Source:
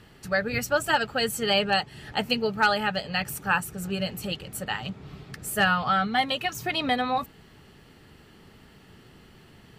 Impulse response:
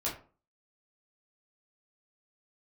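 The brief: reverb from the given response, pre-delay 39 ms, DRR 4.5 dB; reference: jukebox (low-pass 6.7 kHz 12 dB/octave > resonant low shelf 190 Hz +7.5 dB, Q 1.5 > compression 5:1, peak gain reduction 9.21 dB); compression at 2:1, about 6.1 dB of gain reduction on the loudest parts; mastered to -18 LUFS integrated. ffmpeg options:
-filter_complex "[0:a]acompressor=threshold=0.0355:ratio=2,asplit=2[s0][s1];[1:a]atrim=start_sample=2205,adelay=39[s2];[s1][s2]afir=irnorm=-1:irlink=0,volume=0.355[s3];[s0][s3]amix=inputs=2:normalize=0,lowpass=6700,lowshelf=f=190:t=q:w=1.5:g=7.5,acompressor=threshold=0.0251:ratio=5,volume=7.94"

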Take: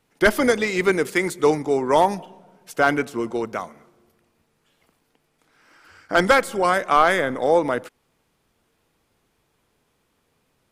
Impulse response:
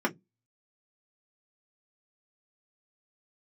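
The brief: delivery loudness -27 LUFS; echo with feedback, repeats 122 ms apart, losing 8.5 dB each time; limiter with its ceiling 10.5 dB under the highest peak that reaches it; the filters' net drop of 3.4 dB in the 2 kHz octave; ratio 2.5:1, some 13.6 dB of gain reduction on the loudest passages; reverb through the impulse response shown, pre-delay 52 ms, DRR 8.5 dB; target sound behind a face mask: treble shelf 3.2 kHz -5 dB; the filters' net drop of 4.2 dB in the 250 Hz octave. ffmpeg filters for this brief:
-filter_complex "[0:a]equalizer=f=250:t=o:g=-6,equalizer=f=2000:t=o:g=-3,acompressor=threshold=0.02:ratio=2.5,alimiter=level_in=1.41:limit=0.0631:level=0:latency=1,volume=0.708,aecho=1:1:122|244|366|488:0.376|0.143|0.0543|0.0206,asplit=2[s0][s1];[1:a]atrim=start_sample=2205,adelay=52[s2];[s1][s2]afir=irnorm=-1:irlink=0,volume=0.112[s3];[s0][s3]amix=inputs=2:normalize=0,highshelf=f=3200:g=-5,volume=3.16"

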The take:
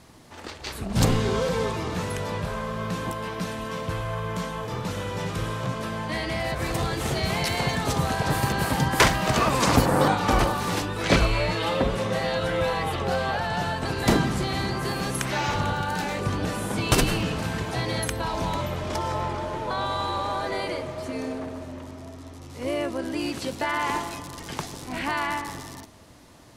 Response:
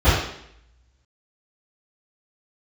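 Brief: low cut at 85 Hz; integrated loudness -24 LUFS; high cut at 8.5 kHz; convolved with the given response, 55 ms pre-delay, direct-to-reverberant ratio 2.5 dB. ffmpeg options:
-filter_complex "[0:a]highpass=85,lowpass=8500,asplit=2[s0][s1];[1:a]atrim=start_sample=2205,adelay=55[s2];[s1][s2]afir=irnorm=-1:irlink=0,volume=0.0562[s3];[s0][s3]amix=inputs=2:normalize=0,volume=0.75"

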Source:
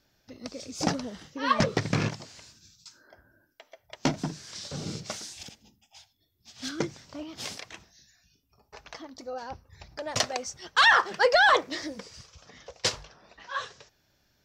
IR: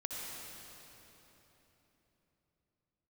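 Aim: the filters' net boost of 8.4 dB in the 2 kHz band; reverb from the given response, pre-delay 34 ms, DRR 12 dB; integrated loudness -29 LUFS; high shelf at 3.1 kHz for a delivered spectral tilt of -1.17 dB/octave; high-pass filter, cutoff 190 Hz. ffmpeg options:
-filter_complex "[0:a]highpass=190,equalizer=f=2000:t=o:g=8.5,highshelf=f=3100:g=7,asplit=2[s0][s1];[1:a]atrim=start_sample=2205,adelay=34[s2];[s1][s2]afir=irnorm=-1:irlink=0,volume=0.211[s3];[s0][s3]amix=inputs=2:normalize=0,volume=0.376"

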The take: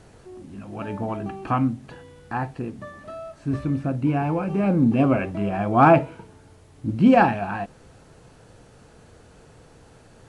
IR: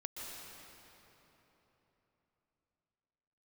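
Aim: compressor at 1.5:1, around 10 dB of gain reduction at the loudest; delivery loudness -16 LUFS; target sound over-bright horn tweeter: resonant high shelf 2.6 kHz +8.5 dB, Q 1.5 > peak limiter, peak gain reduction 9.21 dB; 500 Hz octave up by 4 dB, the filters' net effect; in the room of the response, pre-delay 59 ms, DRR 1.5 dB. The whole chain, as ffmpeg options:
-filter_complex "[0:a]equalizer=f=500:t=o:g=6,acompressor=threshold=0.0158:ratio=1.5,asplit=2[s0][s1];[1:a]atrim=start_sample=2205,adelay=59[s2];[s1][s2]afir=irnorm=-1:irlink=0,volume=0.891[s3];[s0][s3]amix=inputs=2:normalize=0,highshelf=f=2600:t=q:w=1.5:g=8.5,volume=5.31,alimiter=limit=0.531:level=0:latency=1"

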